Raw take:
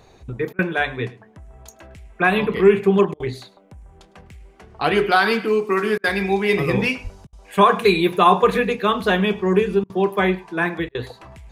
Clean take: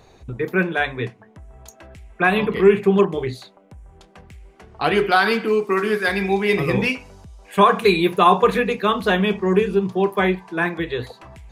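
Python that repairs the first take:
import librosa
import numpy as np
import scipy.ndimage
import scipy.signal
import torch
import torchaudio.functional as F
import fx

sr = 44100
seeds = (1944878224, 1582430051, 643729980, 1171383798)

y = fx.highpass(x, sr, hz=140.0, slope=24, at=(7.03, 7.15), fade=0.02)
y = fx.fix_interpolate(y, sr, at_s=(0.53, 3.14, 5.98, 7.27, 9.84, 10.89), length_ms=57.0)
y = fx.fix_echo_inverse(y, sr, delay_ms=106, level_db=-21.0)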